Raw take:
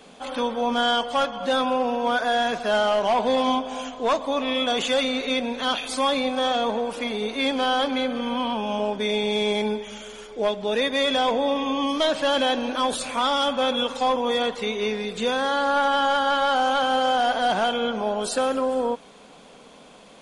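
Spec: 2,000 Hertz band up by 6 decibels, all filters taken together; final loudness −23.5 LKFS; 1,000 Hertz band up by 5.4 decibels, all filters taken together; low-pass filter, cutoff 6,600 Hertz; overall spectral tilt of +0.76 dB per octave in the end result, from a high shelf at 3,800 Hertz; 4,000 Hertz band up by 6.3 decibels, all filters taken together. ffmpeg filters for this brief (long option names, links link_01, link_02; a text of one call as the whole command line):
ffmpeg -i in.wav -af "lowpass=6600,equalizer=frequency=1000:width_type=o:gain=6,equalizer=frequency=2000:width_type=o:gain=4,highshelf=frequency=3800:gain=3.5,equalizer=frequency=4000:width_type=o:gain=4.5,volume=-4.5dB" out.wav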